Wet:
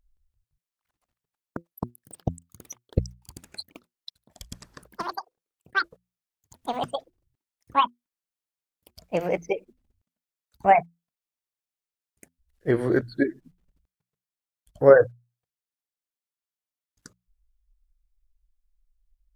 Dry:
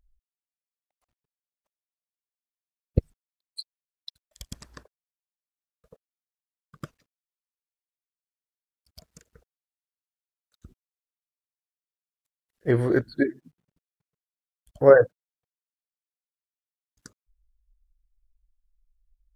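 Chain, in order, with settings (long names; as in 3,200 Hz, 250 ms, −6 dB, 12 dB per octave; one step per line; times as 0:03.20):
mains-hum notches 60/120/180 Hz
delay with pitch and tempo change per echo 170 ms, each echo +6 semitones, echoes 3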